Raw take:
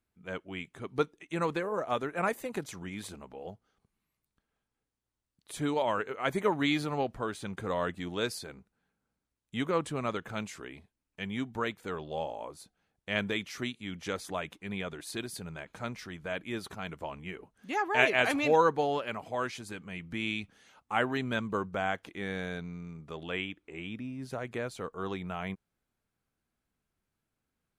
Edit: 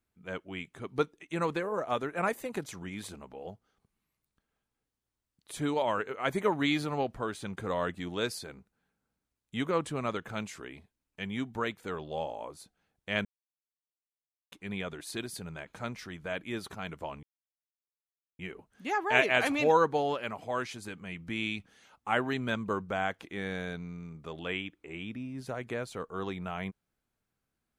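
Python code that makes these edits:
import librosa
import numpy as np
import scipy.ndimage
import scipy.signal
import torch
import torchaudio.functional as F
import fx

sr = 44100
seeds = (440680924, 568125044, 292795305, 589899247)

y = fx.edit(x, sr, fx.silence(start_s=13.25, length_s=1.27),
    fx.insert_silence(at_s=17.23, length_s=1.16), tone=tone)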